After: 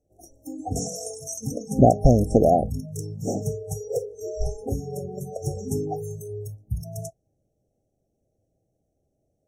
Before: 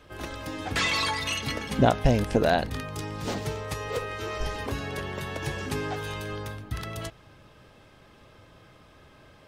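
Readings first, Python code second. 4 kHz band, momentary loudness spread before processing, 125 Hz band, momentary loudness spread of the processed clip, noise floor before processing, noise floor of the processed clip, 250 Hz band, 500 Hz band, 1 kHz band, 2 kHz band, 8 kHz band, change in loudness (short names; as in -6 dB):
-14.5 dB, 12 LU, +5.0 dB, 17 LU, -55 dBFS, -75 dBFS, +5.0 dB, +5.0 dB, +2.5 dB, under -40 dB, +5.0 dB, +3.5 dB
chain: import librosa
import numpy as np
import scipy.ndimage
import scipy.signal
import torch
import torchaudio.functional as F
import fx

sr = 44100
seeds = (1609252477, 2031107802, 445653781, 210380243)

y = fx.noise_reduce_blind(x, sr, reduce_db=24)
y = fx.brickwall_bandstop(y, sr, low_hz=810.0, high_hz=5400.0)
y = F.gain(torch.from_numpy(y), 5.5).numpy()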